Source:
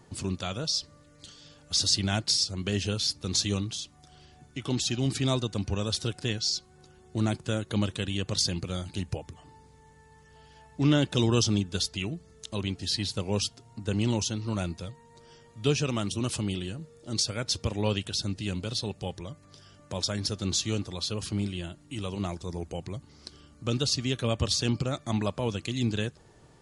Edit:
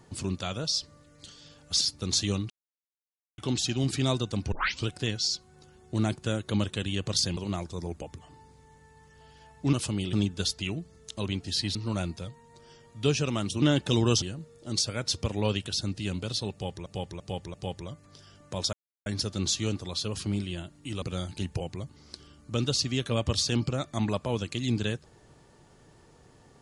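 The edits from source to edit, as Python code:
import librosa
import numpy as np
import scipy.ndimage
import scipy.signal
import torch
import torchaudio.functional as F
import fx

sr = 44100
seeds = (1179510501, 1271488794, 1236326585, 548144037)

y = fx.edit(x, sr, fx.cut(start_s=1.81, length_s=1.22),
    fx.silence(start_s=3.72, length_s=0.88),
    fx.tape_start(start_s=5.74, length_s=0.35),
    fx.swap(start_s=8.59, length_s=0.58, other_s=22.08, other_length_s=0.65),
    fx.swap(start_s=10.88, length_s=0.6, other_s=16.23, other_length_s=0.4),
    fx.cut(start_s=13.1, length_s=1.26),
    fx.repeat(start_s=18.93, length_s=0.34, count=4),
    fx.insert_silence(at_s=20.12, length_s=0.33), tone=tone)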